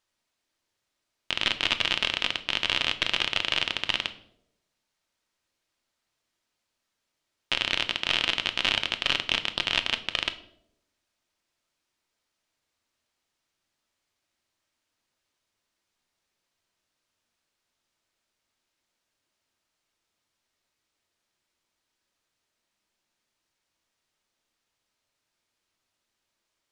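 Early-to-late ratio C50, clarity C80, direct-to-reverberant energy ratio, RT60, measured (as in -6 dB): 15.5 dB, 18.0 dB, 8.0 dB, 0.80 s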